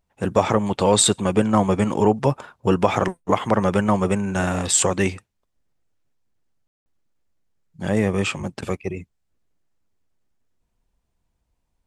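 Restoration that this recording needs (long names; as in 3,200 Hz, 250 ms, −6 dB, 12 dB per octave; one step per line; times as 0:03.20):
ambience match 0:06.67–0:06.86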